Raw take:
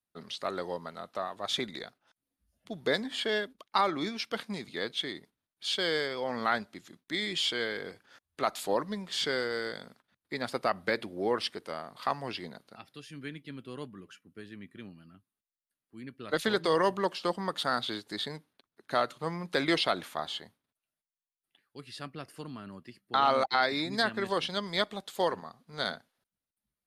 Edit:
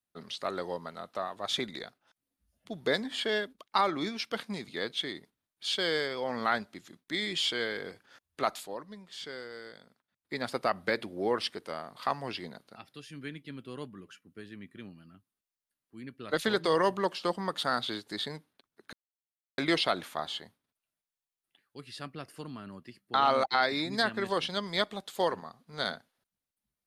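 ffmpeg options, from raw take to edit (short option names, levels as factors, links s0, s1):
-filter_complex "[0:a]asplit=5[s0][s1][s2][s3][s4];[s0]atrim=end=8.68,asetpts=PTS-STARTPTS,afade=t=out:st=8.52:d=0.16:silence=0.281838[s5];[s1]atrim=start=8.68:end=10.17,asetpts=PTS-STARTPTS,volume=0.282[s6];[s2]atrim=start=10.17:end=18.93,asetpts=PTS-STARTPTS,afade=t=in:d=0.16:silence=0.281838,afade=t=out:st=8.756:d=0.004:c=hsin[s7];[s3]atrim=start=18.93:end=19.58,asetpts=PTS-STARTPTS,volume=0[s8];[s4]atrim=start=19.58,asetpts=PTS-STARTPTS,afade=t=in:d=0.004:c=hsin[s9];[s5][s6][s7][s8][s9]concat=n=5:v=0:a=1"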